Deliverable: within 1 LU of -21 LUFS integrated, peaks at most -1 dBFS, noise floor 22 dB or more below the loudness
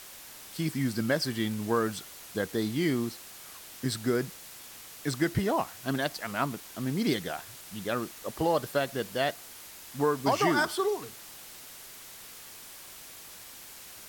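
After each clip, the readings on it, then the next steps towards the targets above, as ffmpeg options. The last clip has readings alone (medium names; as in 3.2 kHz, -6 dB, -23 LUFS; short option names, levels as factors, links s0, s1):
noise floor -47 dBFS; noise floor target -53 dBFS; loudness -30.5 LUFS; peak level -13.5 dBFS; loudness target -21.0 LUFS
-> -af "afftdn=nr=6:nf=-47"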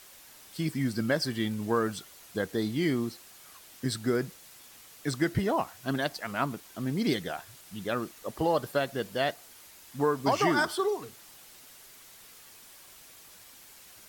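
noise floor -53 dBFS; loudness -30.5 LUFS; peak level -13.5 dBFS; loudness target -21.0 LUFS
-> -af "volume=2.99"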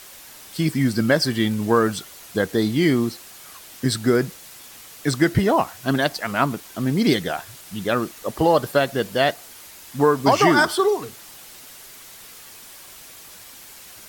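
loudness -21.0 LUFS; peak level -4.0 dBFS; noise floor -43 dBFS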